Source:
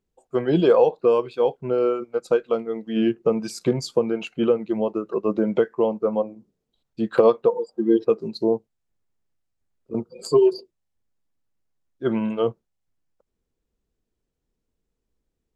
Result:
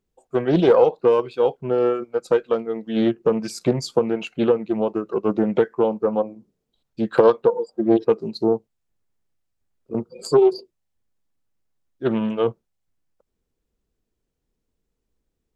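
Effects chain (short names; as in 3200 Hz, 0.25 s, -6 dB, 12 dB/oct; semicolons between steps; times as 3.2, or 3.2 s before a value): Doppler distortion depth 0.3 ms; gain +1.5 dB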